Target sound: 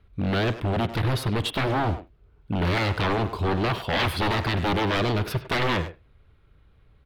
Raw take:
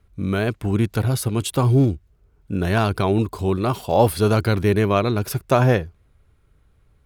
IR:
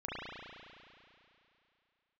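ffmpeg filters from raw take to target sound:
-filter_complex "[0:a]aeval=exprs='0.106*(abs(mod(val(0)/0.106+3,4)-2)-1)':c=same,highshelf=f=5.1k:t=q:w=1.5:g=-10.5,asplit=2[a][b];[b]adelay=100,highpass=300,lowpass=3.4k,asoftclip=type=hard:threshold=-25dB,volume=-10dB[c];[a][c]amix=inputs=2:normalize=0,asplit=2[d][e];[1:a]atrim=start_sample=2205,atrim=end_sample=3969[f];[e][f]afir=irnorm=-1:irlink=0,volume=-15dB[g];[d][g]amix=inputs=2:normalize=0"

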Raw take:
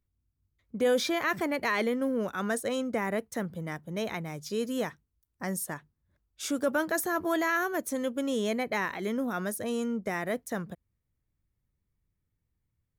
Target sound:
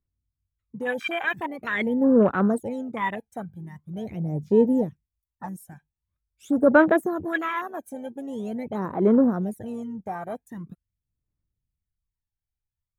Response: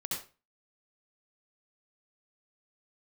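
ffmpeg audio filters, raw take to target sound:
-af "equalizer=f=4.8k:t=o:w=0.67:g=-9,aphaser=in_gain=1:out_gain=1:delay=1.3:decay=0.8:speed=0.44:type=sinusoidal,afwtdn=0.0355"

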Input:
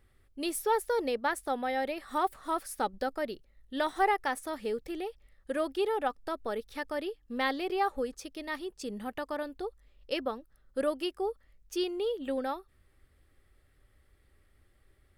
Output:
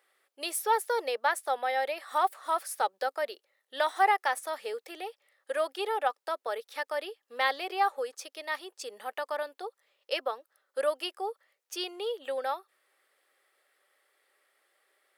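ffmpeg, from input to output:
-af "highpass=f=510:w=0.5412,highpass=f=510:w=1.3066,volume=3.5dB"

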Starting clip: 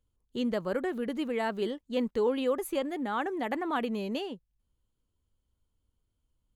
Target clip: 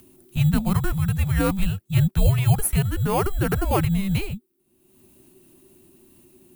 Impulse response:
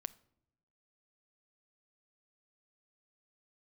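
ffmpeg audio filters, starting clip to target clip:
-filter_complex "[0:a]lowshelf=f=110:t=q:w=3:g=-7,acompressor=mode=upward:threshold=-49dB:ratio=2.5,asplit=2[a][b];[b]acrusher=samples=11:mix=1:aa=0.000001,volume=-10.5dB[c];[a][c]amix=inputs=2:normalize=0,afreqshift=-390,acrossover=split=110|1400[d][e][f];[f]aexciter=amount=3.8:drive=4.8:freq=8.6k[g];[d][e][g]amix=inputs=3:normalize=0,volume=7.5dB"

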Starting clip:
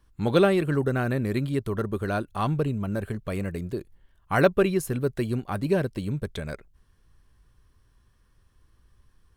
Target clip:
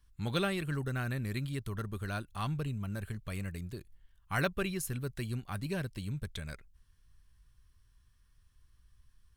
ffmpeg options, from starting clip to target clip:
-af "equalizer=f=450:w=0.44:g=-14,volume=-2dB"

